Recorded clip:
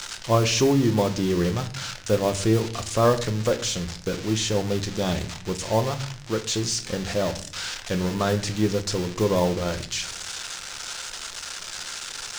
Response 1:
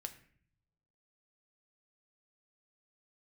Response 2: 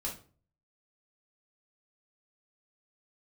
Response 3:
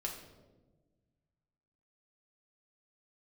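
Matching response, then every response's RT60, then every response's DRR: 1; 0.55, 0.40, 1.3 seconds; 7.0, −3.5, −1.0 decibels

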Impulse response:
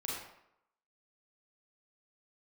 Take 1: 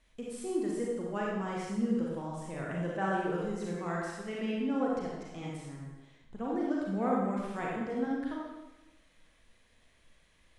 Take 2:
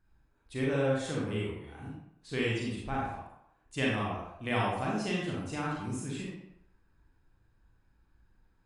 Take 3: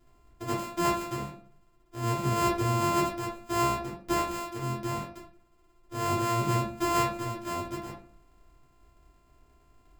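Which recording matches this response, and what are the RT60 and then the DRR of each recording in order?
2; 1.1, 0.80, 0.50 seconds; −4.5, −5.0, −5.5 decibels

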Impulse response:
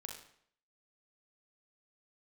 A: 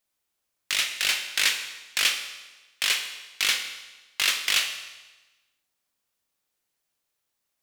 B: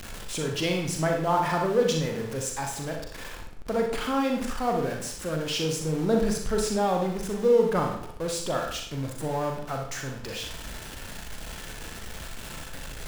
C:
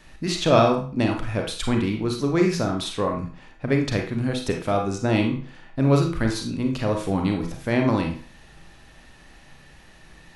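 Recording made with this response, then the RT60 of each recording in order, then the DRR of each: B; 1.2, 0.65, 0.40 seconds; 5.5, 1.5, 2.0 decibels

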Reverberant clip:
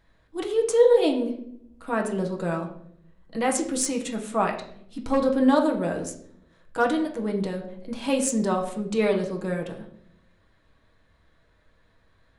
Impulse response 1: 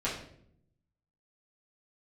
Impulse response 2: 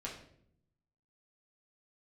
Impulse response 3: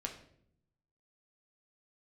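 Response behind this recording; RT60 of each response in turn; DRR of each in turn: 3; 0.65, 0.65, 0.65 seconds; −9.0, −4.5, 1.0 decibels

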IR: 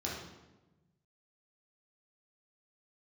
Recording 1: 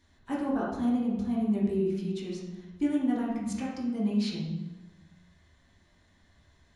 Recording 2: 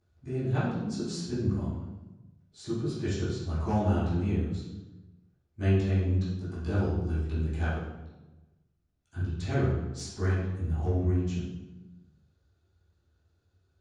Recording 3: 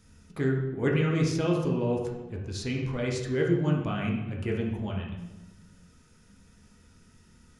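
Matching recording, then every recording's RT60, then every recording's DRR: 1; 1.1, 1.1, 1.1 seconds; −6.5, −15.0, −2.0 decibels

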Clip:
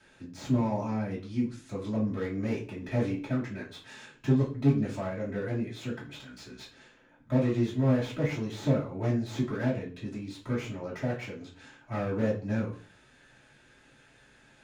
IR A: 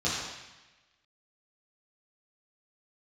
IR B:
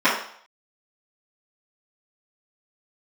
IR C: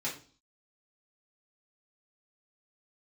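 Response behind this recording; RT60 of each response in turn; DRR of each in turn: C; 1.1, 0.60, 0.40 seconds; −9.5, −16.0, −8.0 decibels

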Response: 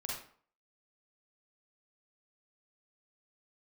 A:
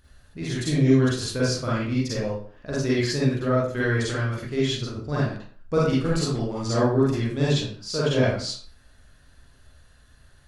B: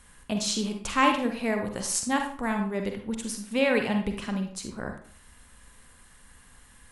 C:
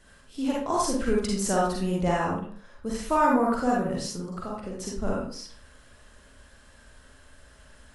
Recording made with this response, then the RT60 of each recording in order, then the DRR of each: C; 0.50, 0.50, 0.50 seconds; −8.0, 4.0, −4.0 decibels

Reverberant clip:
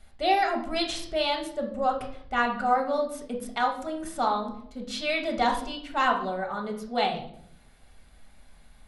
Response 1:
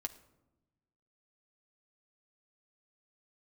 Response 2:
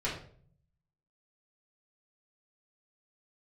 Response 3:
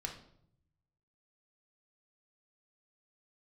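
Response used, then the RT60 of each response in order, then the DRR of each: 3; 1.0, 0.50, 0.70 seconds; 5.5, −7.5, 1.0 decibels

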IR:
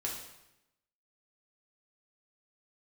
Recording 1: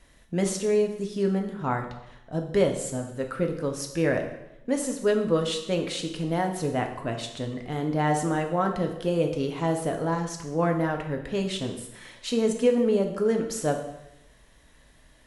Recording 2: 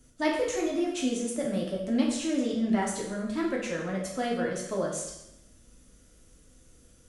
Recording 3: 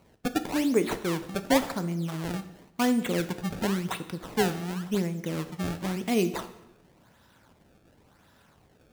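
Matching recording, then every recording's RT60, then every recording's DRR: 2; 0.90, 0.90, 0.90 seconds; 3.0, −3.0, 9.0 decibels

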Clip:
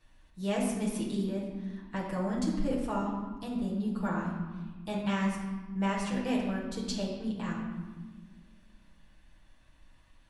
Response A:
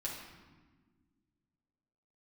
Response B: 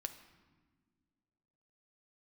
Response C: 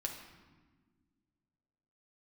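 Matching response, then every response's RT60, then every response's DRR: A; 1.5 s, non-exponential decay, 1.5 s; −5.0, 7.5, 1.0 decibels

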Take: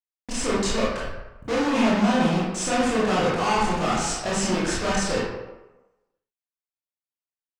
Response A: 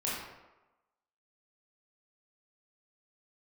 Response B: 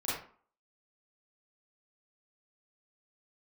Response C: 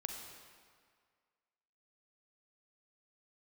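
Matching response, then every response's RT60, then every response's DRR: A; 1.1, 0.45, 1.9 seconds; −7.5, −10.0, 2.5 decibels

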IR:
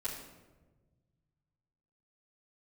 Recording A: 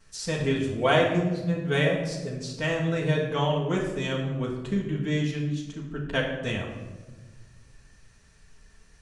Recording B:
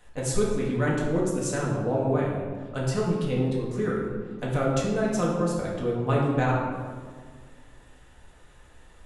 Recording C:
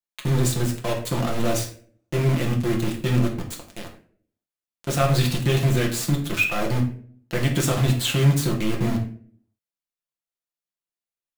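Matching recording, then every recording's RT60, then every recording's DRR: A; 1.3, 1.8, 0.50 seconds; −10.0, −4.5, −1.0 decibels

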